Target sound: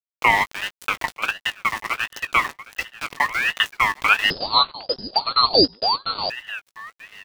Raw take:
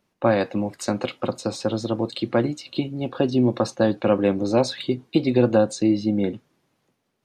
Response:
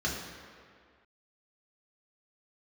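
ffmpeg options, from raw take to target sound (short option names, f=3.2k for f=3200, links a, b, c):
-filter_complex "[0:a]highpass=f=360:w=0.5412,highpass=f=360:w=1.3066,highshelf=f=2.1k:g=-6.5,aeval=exprs='val(0)*gte(abs(val(0)),0.0335)':c=same,asplit=2[a][b];[b]adelay=19,volume=-12dB[c];[a][c]amix=inputs=2:normalize=0,aecho=1:1:940|1880:0.133|0.0307,asettb=1/sr,asplit=3[d][e][f];[d]atrim=end=4.304[g];[e]atrim=start=4.3:end=6.3,asetpts=PTS-STARTPTS,afade=t=in:d=0.004:c=qsin,afade=t=out:st=1.996:d=0.004:c=qsin,lowpass=f=2.6k:t=q:w=0.5098,lowpass=f=2.6k:t=q:w=0.6013,lowpass=f=2.6k:t=q:w=0.9,lowpass=f=2.6k:t=q:w=2.563,afreqshift=-3100[h];[f]atrim=start=6.296[i];[g][h]acrossfade=d=0.004:c1=hsin:c2=qsin[j];[j][i]acrossfade=d=0.004:c1=qsin:c2=hsin,aeval=exprs='val(0)*sin(2*PI*1900*n/s+1900*0.25/1.4*sin(2*PI*1.4*n/s))':c=same,volume=6.5dB"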